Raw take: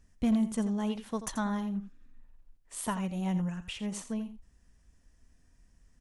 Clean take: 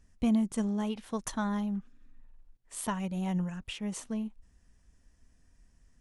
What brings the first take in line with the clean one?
clipped peaks rebuilt −21 dBFS
echo removal 85 ms −12 dB

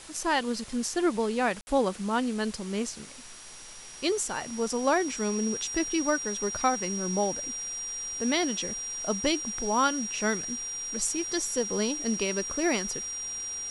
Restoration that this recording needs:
notch filter 5,700 Hz, Q 30
ambience match 0:01.61–0:01.67
broadband denoise 30 dB, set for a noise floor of −43 dBFS

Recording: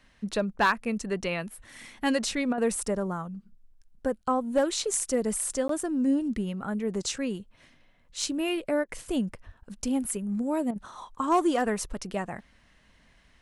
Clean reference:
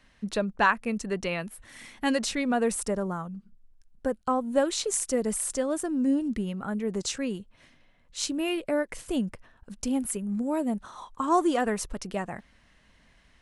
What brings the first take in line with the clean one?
clipped peaks rebuilt −16 dBFS
0:09.45–0:09.57: high-pass filter 140 Hz 24 dB per octave
repair the gap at 0:05.68, 13 ms
repair the gap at 0:02.53/0:08.84/0:10.71, 47 ms

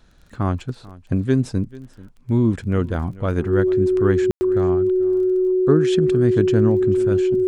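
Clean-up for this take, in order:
click removal
notch filter 370 Hz, Q 30
ambience match 0:04.31–0:04.41
echo removal 439 ms −20 dB

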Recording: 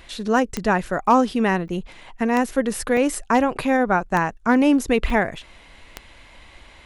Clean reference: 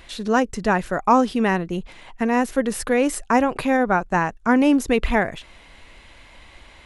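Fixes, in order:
clipped peaks rebuilt −7.5 dBFS
click removal
repair the gap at 0:01.07/0:01.68/0:02.97/0:05.10, 2.2 ms

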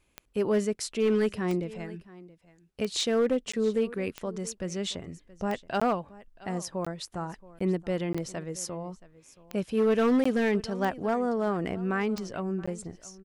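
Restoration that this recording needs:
clipped peaks rebuilt −19 dBFS
click removal
repair the gap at 0:03.52/0:05.80/0:06.85/0:07.59/0:08.13/0:10.24/0:12.66, 15 ms
echo removal 675 ms −20 dB

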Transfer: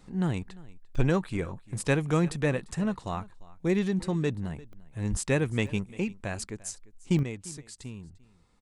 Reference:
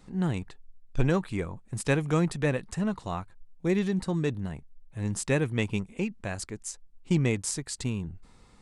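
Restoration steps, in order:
high-pass at the plosives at 0:05.10
repair the gap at 0:00.95/0:04.73/0:05.67/0:07.19, 1.1 ms
echo removal 347 ms −21.5 dB
level correction +10 dB, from 0:07.23

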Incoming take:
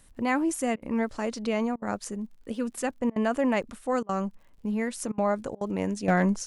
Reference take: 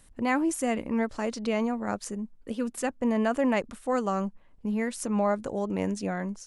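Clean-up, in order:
clipped peaks rebuilt −13.5 dBFS
click removal
repair the gap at 0:00.76/0:01.76/0:03.10/0:04.03/0:05.12/0:05.55, 59 ms
level 0 dB, from 0:06.08 −9.5 dB

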